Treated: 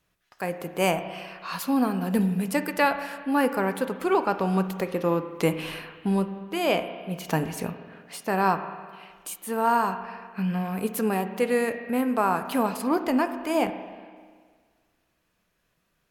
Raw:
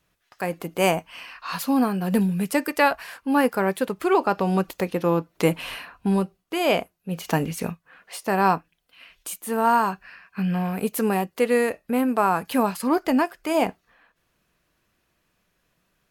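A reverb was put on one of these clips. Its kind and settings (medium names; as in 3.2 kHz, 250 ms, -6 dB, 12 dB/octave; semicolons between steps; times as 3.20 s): spring tank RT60 1.7 s, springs 32/51 ms, chirp 55 ms, DRR 9 dB; trim -3 dB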